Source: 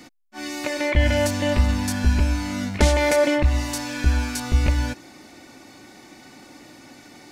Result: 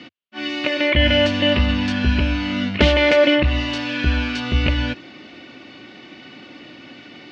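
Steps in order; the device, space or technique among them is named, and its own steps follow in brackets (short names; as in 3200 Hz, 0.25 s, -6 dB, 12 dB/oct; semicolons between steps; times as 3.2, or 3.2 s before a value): guitar cabinet (speaker cabinet 81–4100 Hz, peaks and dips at 92 Hz -4 dB, 840 Hz -8 dB, 2900 Hz +10 dB); gain +5 dB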